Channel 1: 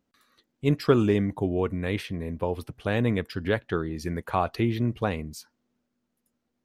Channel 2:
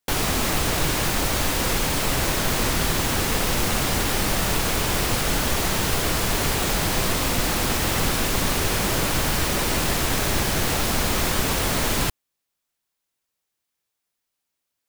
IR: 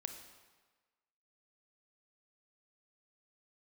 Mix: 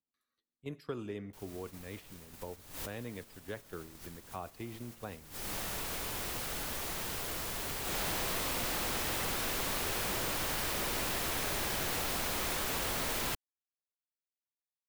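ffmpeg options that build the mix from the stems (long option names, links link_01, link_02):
-filter_complex "[0:a]highshelf=frequency=8200:gain=5.5,volume=-18.5dB,asplit=3[link_01][link_02][link_03];[link_02]volume=-7dB[link_04];[1:a]acrusher=bits=4:mix=0:aa=0.000001,highshelf=frequency=8200:gain=8.5,acontrast=77,adelay=1250,volume=-11.5dB,afade=type=in:start_time=7.84:duration=0.24:silence=0.298538[link_05];[link_03]apad=whole_len=711576[link_06];[link_05][link_06]sidechaincompress=threshold=-57dB:ratio=10:attack=6.4:release=284[link_07];[2:a]atrim=start_sample=2205[link_08];[link_04][link_08]afir=irnorm=-1:irlink=0[link_09];[link_01][link_07][link_09]amix=inputs=3:normalize=0,agate=range=-8dB:threshold=-43dB:ratio=16:detection=peak,acrossover=split=330|4600[link_10][link_11][link_12];[link_10]acompressor=threshold=-43dB:ratio=4[link_13];[link_11]acompressor=threshold=-36dB:ratio=4[link_14];[link_12]acompressor=threshold=-39dB:ratio=4[link_15];[link_13][link_14][link_15]amix=inputs=3:normalize=0"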